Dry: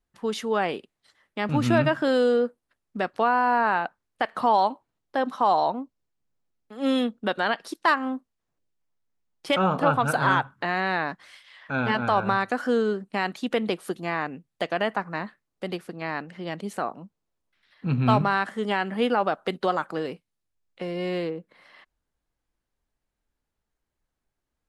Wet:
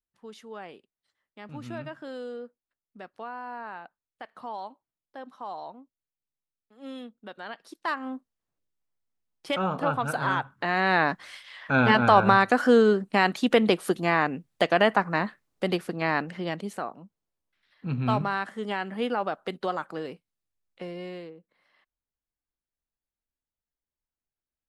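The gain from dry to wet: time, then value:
7.32 s -16.5 dB
8.16 s -5 dB
10.36 s -5 dB
11.03 s +5 dB
16.3 s +5 dB
16.86 s -5 dB
20.84 s -5 dB
21.34 s -14.5 dB

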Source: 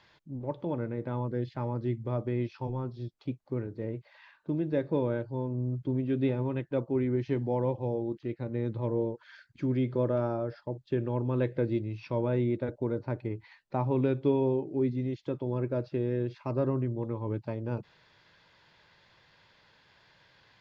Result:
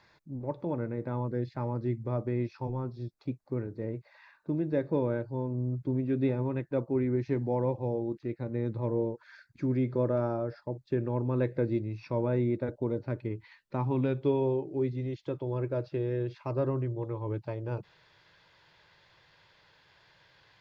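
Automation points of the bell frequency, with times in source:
bell -14.5 dB 0.23 oct
12.67 s 3100 Hz
13.16 s 740 Hz
13.76 s 740 Hz
14.25 s 230 Hz

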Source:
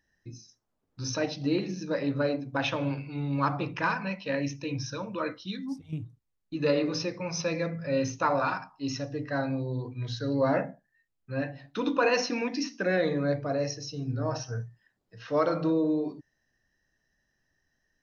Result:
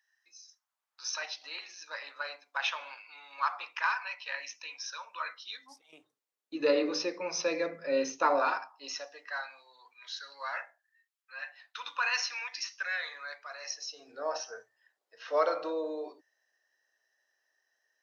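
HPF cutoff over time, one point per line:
HPF 24 dB/oct
5.29 s 950 Hz
6.6 s 310 Hz
8.36 s 310 Hz
9.5 s 1100 Hz
13.58 s 1100 Hz
14.13 s 490 Hz

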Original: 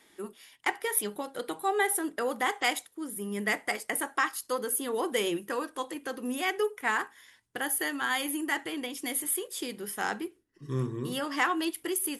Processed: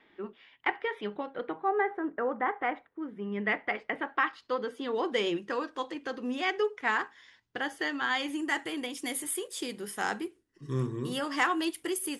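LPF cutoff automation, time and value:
LPF 24 dB/oct
1.24 s 3100 Hz
1.74 s 1800 Hz
2.84 s 1800 Hz
3.25 s 2900 Hz
3.98 s 2900 Hz
5.28 s 5700 Hz
8.14 s 5700 Hz
8.66 s 9900 Hz

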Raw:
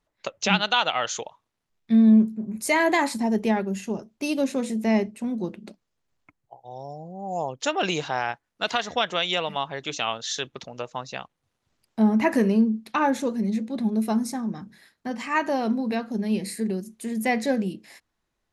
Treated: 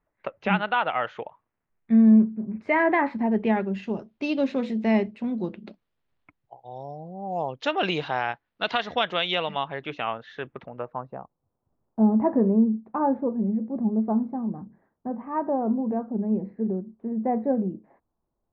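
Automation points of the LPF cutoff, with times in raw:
LPF 24 dB/oct
3.09 s 2200 Hz
3.88 s 3900 Hz
9.48 s 3900 Hz
10.15 s 2100 Hz
10.72 s 2100 Hz
11.19 s 1000 Hz

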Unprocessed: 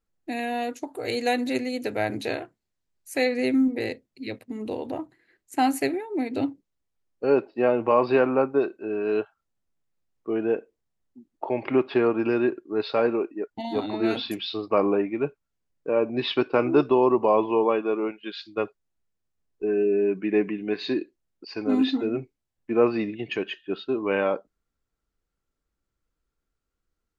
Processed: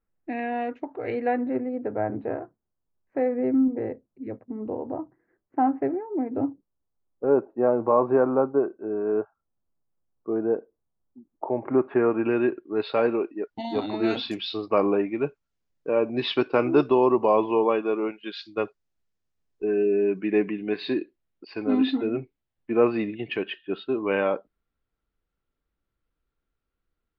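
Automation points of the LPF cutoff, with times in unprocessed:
LPF 24 dB/oct
0.99 s 2300 Hz
1.61 s 1300 Hz
11.64 s 1300 Hz
12.37 s 3000 Hz
13.81 s 6800 Hz
20.1 s 6800 Hz
21 s 3900 Hz

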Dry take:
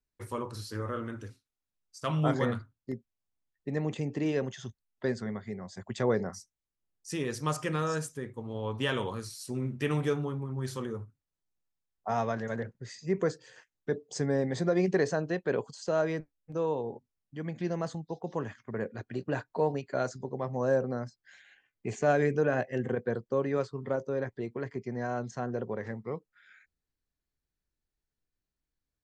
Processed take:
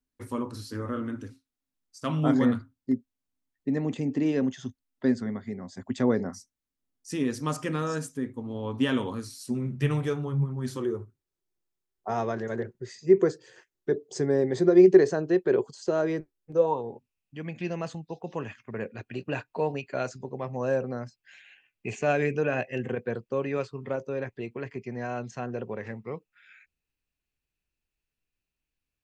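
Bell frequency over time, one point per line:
bell +14.5 dB 0.34 oct
9.44 s 260 Hz
10.15 s 84 Hz
10.88 s 370 Hz
16.53 s 370 Hz
16.95 s 2600 Hz

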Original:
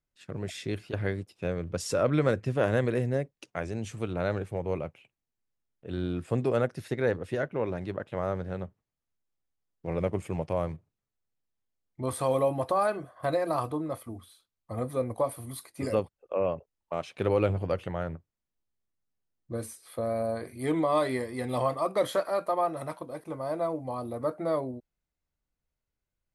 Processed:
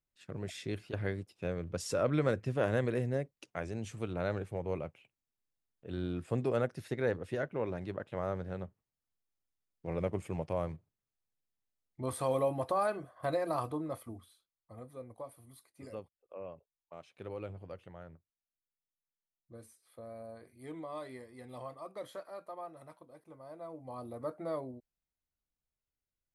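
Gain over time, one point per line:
14.1 s -5 dB
14.85 s -17 dB
23.59 s -17 dB
23.99 s -8.5 dB

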